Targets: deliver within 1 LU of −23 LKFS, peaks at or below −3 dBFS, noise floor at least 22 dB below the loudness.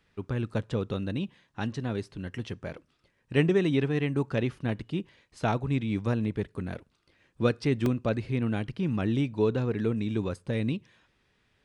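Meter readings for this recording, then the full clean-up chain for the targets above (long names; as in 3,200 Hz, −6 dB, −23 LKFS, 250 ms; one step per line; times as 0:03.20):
number of dropouts 1; longest dropout 1.9 ms; integrated loudness −30.0 LKFS; sample peak −11.0 dBFS; target loudness −23.0 LKFS
→ repair the gap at 0:07.86, 1.9 ms
level +7 dB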